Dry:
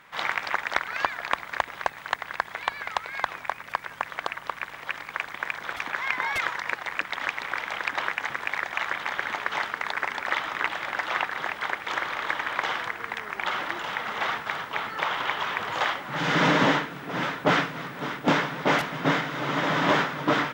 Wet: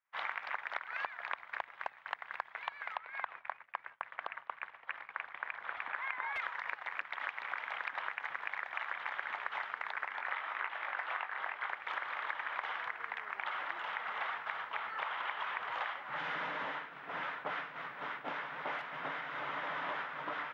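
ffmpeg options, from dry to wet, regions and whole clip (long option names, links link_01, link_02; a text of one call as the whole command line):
ffmpeg -i in.wav -filter_complex "[0:a]asettb=1/sr,asplit=3[link_01][link_02][link_03];[link_01]atrim=end=2.964[link_04];[link_02]atrim=start=2.96:end=6.36,asetpts=PTS-STARTPTS,afade=type=in:duration=0.004:curve=qsin,afade=type=out:start_time=3.396:duration=0.004:curve=qsin,acrossover=split=4800[link_05][link_06];[link_06]acompressor=threshold=-59dB:ratio=4:attack=1:release=60[link_07];[link_05][link_07]amix=inputs=2:normalize=0,agate=range=-33dB:threshold=-40dB:ratio=3:release=100:detection=peak,highshelf=frequency=3600:gain=-5[link_08];[link_03]atrim=start=6.356[link_09];[link_04][link_08]acrossfade=duration=0.004:curve1=hsin:curve2=qsin[link_10];[link_10][link_09]acrossfade=duration=0.004:curve1=qsin:curve2=hsin,asettb=1/sr,asplit=3[link_11][link_12][link_13];[link_11]atrim=end=10.084[link_14];[link_12]atrim=start=10.08:end=11.69,asetpts=PTS-STARTPTS,afade=type=in:duration=0.004:curve=qsin,afade=type=out:start_time=1.606:duration=0.004:curve=qsin,bass=frequency=250:gain=-6,treble=frequency=4000:gain=-6,asplit=2[link_15][link_16];[link_16]adelay=21,volume=-7.5dB[link_17];[link_15][link_17]amix=inputs=2:normalize=0,atrim=end_sample=71001[link_18];[link_13]atrim=start=11.686[link_19];[link_14][link_18]acrossfade=duration=0.004:curve1=hsin:curve2=qsin[link_20];[link_20][link_19]acrossfade=duration=0.004:curve1=qsin:curve2=hsin,acompressor=threshold=-28dB:ratio=6,agate=range=-33dB:threshold=-36dB:ratio=3:detection=peak,acrossover=split=600 3200:gain=0.158 1 0.0708[link_21][link_22][link_23];[link_21][link_22][link_23]amix=inputs=3:normalize=0,volume=-5dB" out.wav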